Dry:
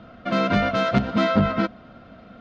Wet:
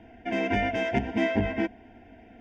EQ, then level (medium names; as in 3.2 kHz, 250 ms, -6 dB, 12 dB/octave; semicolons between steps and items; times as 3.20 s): Butterworth band-stop 1.2 kHz, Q 2.1; static phaser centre 840 Hz, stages 8; 0.0 dB